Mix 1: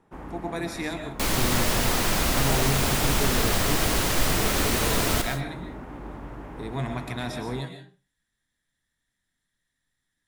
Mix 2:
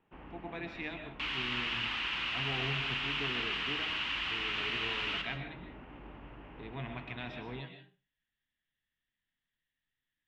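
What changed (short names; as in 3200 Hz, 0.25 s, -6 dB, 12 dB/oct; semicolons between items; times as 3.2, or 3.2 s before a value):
second sound: add steep high-pass 950 Hz; master: add ladder low-pass 3100 Hz, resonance 70%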